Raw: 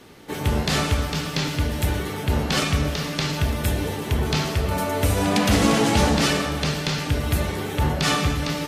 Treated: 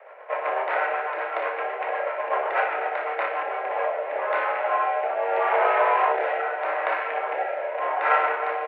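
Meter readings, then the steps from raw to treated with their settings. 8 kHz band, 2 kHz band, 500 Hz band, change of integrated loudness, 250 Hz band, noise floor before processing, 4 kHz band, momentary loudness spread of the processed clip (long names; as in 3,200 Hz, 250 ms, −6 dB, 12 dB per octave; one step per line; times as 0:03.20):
below −40 dB, +1.0 dB, +2.0 dB, −2.5 dB, below −25 dB, −31 dBFS, −19.0 dB, 7 LU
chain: running median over 15 samples
in parallel at +2 dB: speech leveller within 4 dB 0.5 s
on the sum: rotating-speaker cabinet horn 8 Hz, later 0.8 Hz, at 0:03.13
on a send: ambience of single reflections 31 ms −8.5 dB, 59 ms −8 dB
on the sum: single-sideband voice off tune +170 Hz 410–2,400 Hz
SBC 128 kbit/s 44,100 Hz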